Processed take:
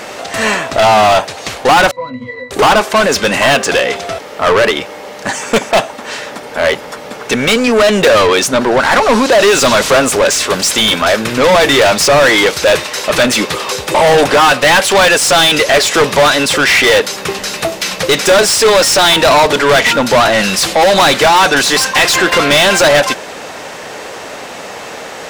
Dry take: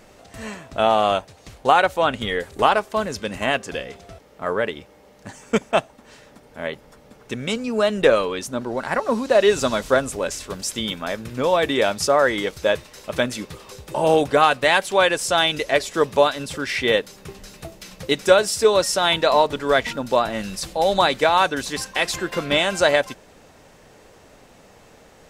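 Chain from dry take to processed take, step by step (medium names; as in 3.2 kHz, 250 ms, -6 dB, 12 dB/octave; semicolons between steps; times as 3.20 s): overdrive pedal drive 33 dB, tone 5.5 kHz, clips at -1 dBFS; 1.91–2.51 s: pitch-class resonator B, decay 0.21 s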